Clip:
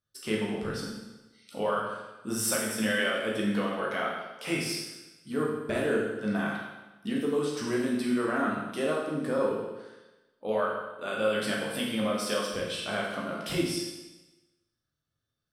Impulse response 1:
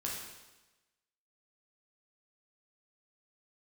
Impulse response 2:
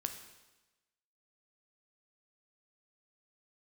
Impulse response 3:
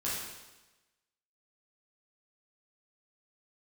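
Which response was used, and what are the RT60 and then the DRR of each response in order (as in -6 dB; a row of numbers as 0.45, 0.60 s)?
1; 1.1, 1.1, 1.1 s; -4.0, 5.5, -9.0 dB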